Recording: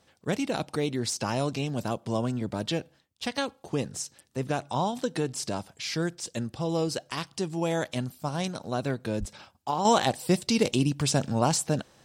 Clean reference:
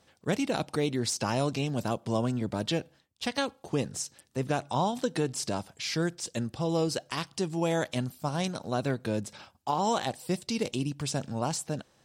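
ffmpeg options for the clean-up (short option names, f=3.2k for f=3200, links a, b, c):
-filter_complex "[0:a]asplit=3[a][b][c];[a]afade=t=out:st=9.19:d=0.02[d];[b]highpass=f=140:w=0.5412,highpass=f=140:w=1.3066,afade=t=in:st=9.19:d=0.02,afade=t=out:st=9.31:d=0.02[e];[c]afade=t=in:st=9.31:d=0.02[f];[d][e][f]amix=inputs=3:normalize=0,asetnsamples=n=441:p=0,asendcmd='9.85 volume volume -6.5dB',volume=0dB"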